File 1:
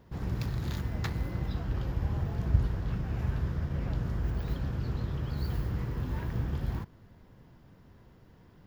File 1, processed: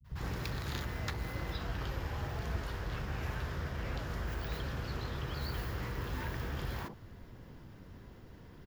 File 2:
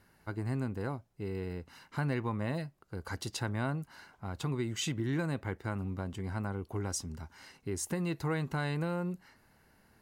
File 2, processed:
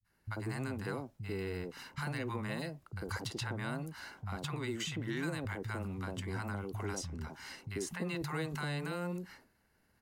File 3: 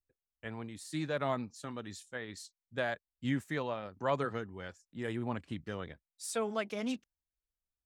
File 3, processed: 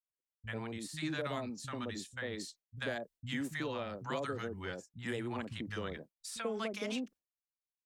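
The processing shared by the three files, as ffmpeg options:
-filter_complex "[0:a]agate=range=0.0224:threshold=0.00178:ratio=3:detection=peak,acrossover=split=470|1100|3800[s0][s1][s2][s3];[s0]acompressor=threshold=0.00708:ratio=4[s4];[s1]acompressor=threshold=0.00316:ratio=4[s5];[s2]acompressor=threshold=0.00398:ratio=4[s6];[s3]acompressor=threshold=0.002:ratio=4[s7];[s4][s5][s6][s7]amix=inputs=4:normalize=0,acrossover=split=160|800[s8][s9][s10];[s10]adelay=40[s11];[s9]adelay=90[s12];[s8][s12][s11]amix=inputs=3:normalize=0,volume=2"

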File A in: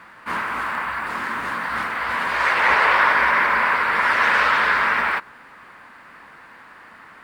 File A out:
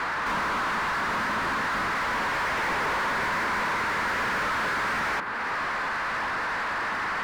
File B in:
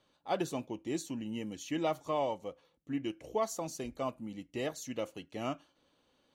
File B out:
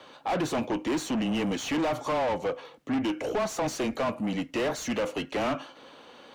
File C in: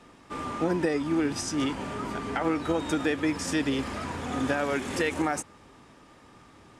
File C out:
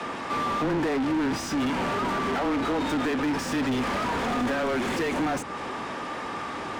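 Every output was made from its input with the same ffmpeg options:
-filter_complex "[0:a]acrossover=split=320[s0][s1];[s1]acompressor=threshold=0.0112:ratio=2.5[s2];[s0][s2]amix=inputs=2:normalize=0,afreqshift=-15,asplit=2[s3][s4];[s4]highpass=f=720:p=1,volume=50.1,asoftclip=type=tanh:threshold=0.112[s5];[s3][s5]amix=inputs=2:normalize=0,lowpass=f=1700:p=1,volume=0.501"

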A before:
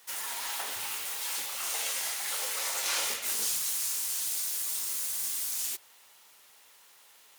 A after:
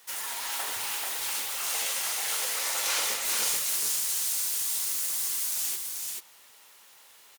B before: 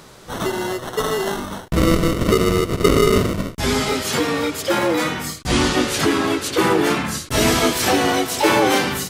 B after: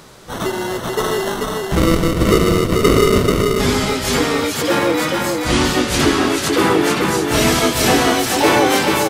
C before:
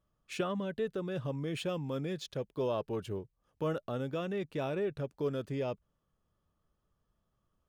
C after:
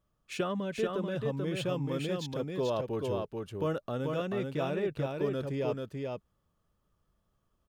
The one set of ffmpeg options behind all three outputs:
-af "aecho=1:1:436:0.668,volume=1.19"

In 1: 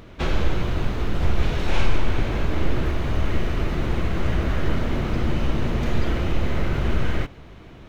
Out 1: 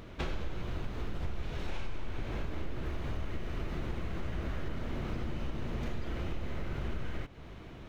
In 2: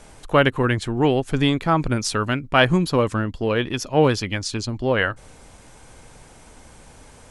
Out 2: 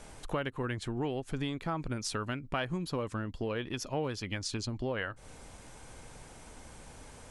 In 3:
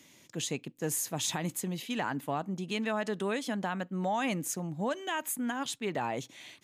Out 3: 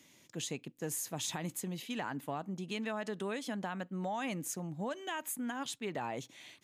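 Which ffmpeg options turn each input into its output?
-af "acompressor=threshold=0.0355:ratio=4,volume=0.631"

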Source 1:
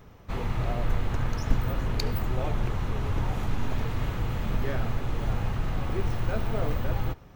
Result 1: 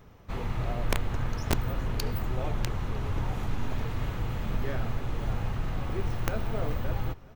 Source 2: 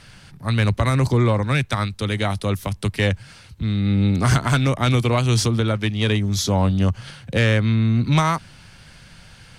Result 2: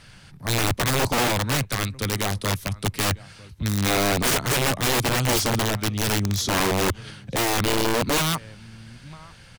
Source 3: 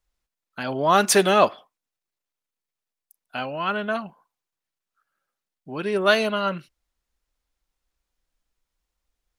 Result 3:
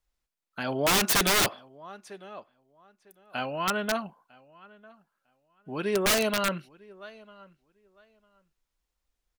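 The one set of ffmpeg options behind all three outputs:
-filter_complex "[0:a]asplit=2[s0][s1];[s1]adelay=951,lowpass=f=3800:p=1,volume=0.0668,asplit=2[s2][s3];[s3]adelay=951,lowpass=f=3800:p=1,volume=0.18[s4];[s0][s2][s4]amix=inputs=3:normalize=0,aeval=exprs='(mod(5.31*val(0)+1,2)-1)/5.31':c=same,volume=0.75"

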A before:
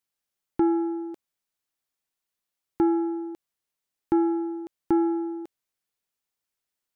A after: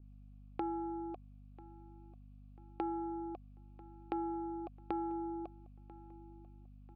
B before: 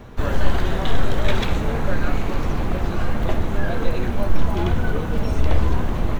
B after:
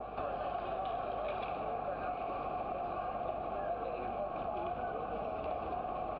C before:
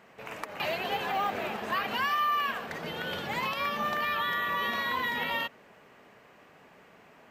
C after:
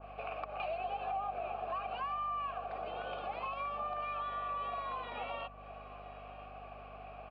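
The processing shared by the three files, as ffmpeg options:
-filter_complex "[0:a]asplit=3[s0][s1][s2];[s0]bandpass=f=730:t=q:w=8,volume=1[s3];[s1]bandpass=f=1090:t=q:w=8,volume=0.501[s4];[s2]bandpass=f=2440:t=q:w=8,volume=0.355[s5];[s3][s4][s5]amix=inputs=3:normalize=0,bandreject=f=1000:w=9.2,asplit=2[s6][s7];[s7]alimiter=level_in=2.99:limit=0.0631:level=0:latency=1,volume=0.335,volume=1.12[s8];[s6][s8]amix=inputs=2:normalize=0,acompressor=threshold=0.00355:ratio=3,aeval=exprs='val(0)+0.000708*(sin(2*PI*50*n/s)+sin(2*PI*2*50*n/s)/2+sin(2*PI*3*50*n/s)/3+sin(2*PI*4*50*n/s)/4+sin(2*PI*5*50*n/s)/5)':c=same,asplit=2[s9][s10];[s10]adelay=992,lowpass=f=3200:p=1,volume=0.1,asplit=2[s11][s12];[s12]adelay=992,lowpass=f=3200:p=1,volume=0.45,asplit=2[s13][s14];[s14]adelay=992,lowpass=f=3200:p=1,volume=0.45[s15];[s11][s13][s15]amix=inputs=3:normalize=0[s16];[s9][s16]amix=inputs=2:normalize=0,aresample=11025,aresample=44100,adynamicequalizer=threshold=0.00112:dfrequency=1800:dqfactor=0.7:tfrequency=1800:tqfactor=0.7:attack=5:release=100:ratio=0.375:range=2.5:mode=cutabove:tftype=highshelf,volume=2.82"

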